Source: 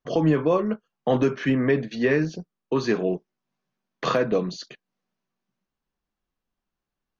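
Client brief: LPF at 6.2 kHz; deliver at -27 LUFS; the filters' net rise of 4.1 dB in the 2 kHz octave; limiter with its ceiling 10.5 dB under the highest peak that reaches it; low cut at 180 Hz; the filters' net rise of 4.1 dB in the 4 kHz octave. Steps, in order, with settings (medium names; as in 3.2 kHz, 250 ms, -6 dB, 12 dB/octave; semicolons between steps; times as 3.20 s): high-pass 180 Hz; low-pass 6.2 kHz; peaking EQ 2 kHz +4 dB; peaking EQ 4 kHz +4.5 dB; trim +2 dB; peak limiter -16.5 dBFS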